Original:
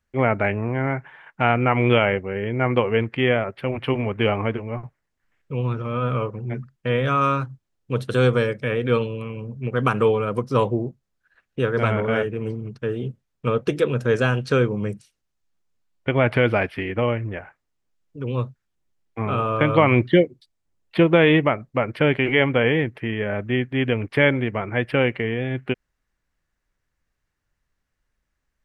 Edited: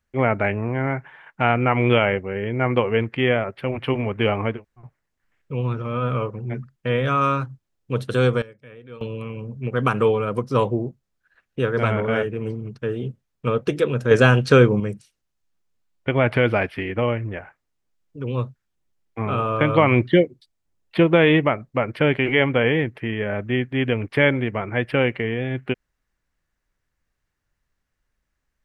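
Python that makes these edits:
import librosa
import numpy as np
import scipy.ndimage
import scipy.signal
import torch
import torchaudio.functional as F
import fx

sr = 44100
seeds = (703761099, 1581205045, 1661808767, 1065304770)

y = fx.edit(x, sr, fx.room_tone_fill(start_s=4.57, length_s=0.27, crossfade_s=0.16),
    fx.fade_down_up(start_s=7.99, length_s=1.45, db=-20.0, fade_s=0.43, curve='log'),
    fx.clip_gain(start_s=14.11, length_s=0.69, db=6.0), tone=tone)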